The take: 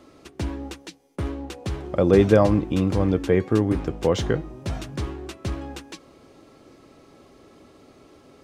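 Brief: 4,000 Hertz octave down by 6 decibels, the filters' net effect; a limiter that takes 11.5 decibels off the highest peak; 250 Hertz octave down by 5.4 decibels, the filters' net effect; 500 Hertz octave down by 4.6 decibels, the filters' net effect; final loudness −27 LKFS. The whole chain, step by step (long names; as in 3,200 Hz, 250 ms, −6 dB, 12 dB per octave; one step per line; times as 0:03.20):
parametric band 250 Hz −6.5 dB
parametric band 500 Hz −3.5 dB
parametric band 4,000 Hz −8 dB
level +5.5 dB
brickwall limiter −13.5 dBFS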